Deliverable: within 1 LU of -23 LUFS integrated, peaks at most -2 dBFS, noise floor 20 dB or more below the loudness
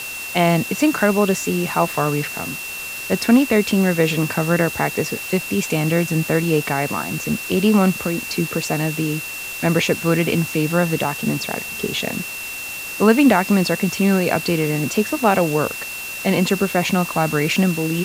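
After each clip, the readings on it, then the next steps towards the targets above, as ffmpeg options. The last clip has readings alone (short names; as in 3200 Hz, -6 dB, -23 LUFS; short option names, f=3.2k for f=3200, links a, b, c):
steady tone 2700 Hz; tone level -29 dBFS; noise floor -30 dBFS; noise floor target -40 dBFS; loudness -19.5 LUFS; peak -2.0 dBFS; loudness target -23.0 LUFS
-> -af "bandreject=f=2.7k:w=30"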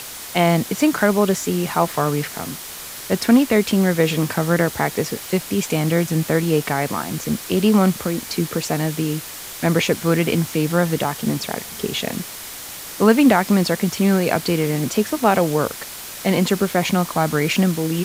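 steady tone none; noise floor -34 dBFS; noise floor target -40 dBFS
-> -af "afftdn=nr=6:nf=-34"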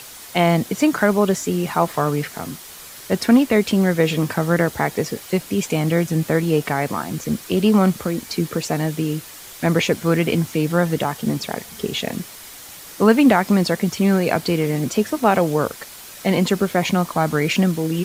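noise floor -39 dBFS; noise floor target -40 dBFS
-> -af "afftdn=nr=6:nf=-39"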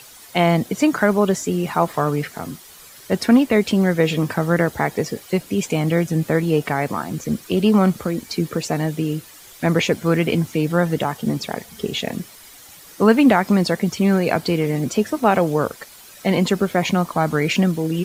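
noise floor -44 dBFS; loudness -20.0 LUFS; peak -2.5 dBFS; loudness target -23.0 LUFS
-> -af "volume=-3dB"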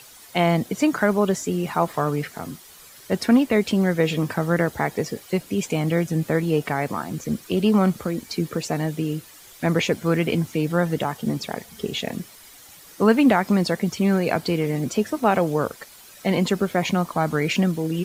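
loudness -23.0 LUFS; peak -5.5 dBFS; noise floor -47 dBFS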